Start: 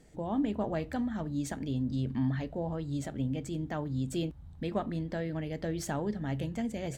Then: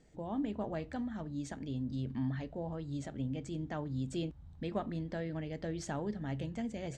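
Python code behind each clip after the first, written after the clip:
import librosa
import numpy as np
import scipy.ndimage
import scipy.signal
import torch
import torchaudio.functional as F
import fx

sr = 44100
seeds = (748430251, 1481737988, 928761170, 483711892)

y = scipy.signal.sosfilt(scipy.signal.butter(4, 7900.0, 'lowpass', fs=sr, output='sos'), x)
y = fx.rider(y, sr, range_db=10, speed_s=2.0)
y = y * librosa.db_to_amplitude(-5.0)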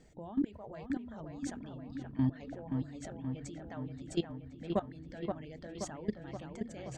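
y = fx.level_steps(x, sr, step_db=17)
y = fx.dereverb_blind(y, sr, rt60_s=1.3)
y = fx.echo_wet_lowpass(y, sr, ms=526, feedback_pct=63, hz=2700.0, wet_db=-5)
y = y * librosa.db_to_amplitude(7.0)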